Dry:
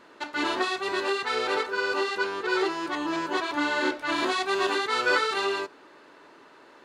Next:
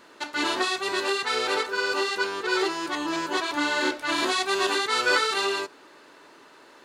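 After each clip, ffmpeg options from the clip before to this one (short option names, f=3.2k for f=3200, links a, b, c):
-af "highshelf=f=4.4k:g=10.5"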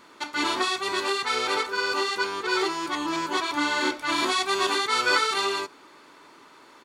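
-af "aecho=1:1:0.9:0.33"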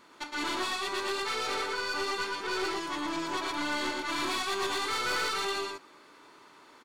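-af "aecho=1:1:115:0.668,aeval=exprs='(tanh(12.6*val(0)+0.35)-tanh(0.35))/12.6':c=same,volume=-4.5dB"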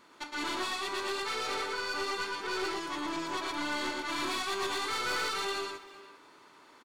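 -filter_complex "[0:a]asplit=2[a][b];[b]adelay=390,highpass=300,lowpass=3.4k,asoftclip=type=hard:threshold=-34dB,volume=-13dB[c];[a][c]amix=inputs=2:normalize=0,volume=-2dB"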